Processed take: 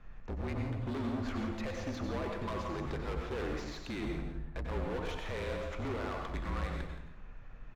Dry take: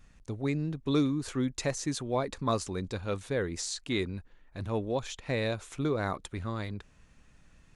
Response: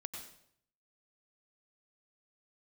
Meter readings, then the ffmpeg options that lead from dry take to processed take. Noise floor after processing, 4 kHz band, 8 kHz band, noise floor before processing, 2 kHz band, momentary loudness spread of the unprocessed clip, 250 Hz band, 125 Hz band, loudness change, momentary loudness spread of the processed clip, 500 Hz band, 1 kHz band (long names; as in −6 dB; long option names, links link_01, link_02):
−49 dBFS, −8.5 dB, −17.0 dB, −61 dBFS, −3.5 dB, 8 LU, −6.0 dB, −4.5 dB, −5.5 dB, 6 LU, −6.0 dB, −3.5 dB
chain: -filter_complex "[0:a]equalizer=frequency=200:width_type=o:width=2.9:gain=-7,bandreject=frequency=95.18:width_type=h:width=4,bandreject=frequency=190.36:width_type=h:width=4,bandreject=frequency=285.54:width_type=h:width=4,bandreject=frequency=380.72:width_type=h:width=4,bandreject=frequency=475.9:width_type=h:width=4,bandreject=frequency=571.08:width_type=h:width=4,bandreject=frequency=666.26:width_type=h:width=4,bandreject=frequency=761.44:width_type=h:width=4,bandreject=frequency=856.62:width_type=h:width=4,bandreject=frequency=951.8:width_type=h:width=4,bandreject=frequency=1046.98:width_type=h:width=4,bandreject=frequency=1142.16:width_type=h:width=4,asplit=2[link_01][link_02];[link_02]acompressor=threshold=-41dB:ratio=6,volume=1dB[link_03];[link_01][link_03]amix=inputs=2:normalize=0,alimiter=level_in=2dB:limit=-24dB:level=0:latency=1,volume=-2dB,afreqshift=-38,aeval=exprs='0.0841*(cos(1*acos(clip(val(0)/0.0841,-1,1)))-cos(1*PI/2))+0.0422*(cos(2*acos(clip(val(0)/0.0841,-1,1)))-cos(2*PI/2))':channel_layout=same,aresample=16000,asoftclip=type=tanh:threshold=-32.5dB,aresample=44100,adynamicsmooth=sensitivity=3.5:basefreq=1500,asoftclip=type=hard:threshold=-40dB,aecho=1:1:172:0.266[link_04];[1:a]atrim=start_sample=2205[link_05];[link_04][link_05]afir=irnorm=-1:irlink=0,volume=8.5dB"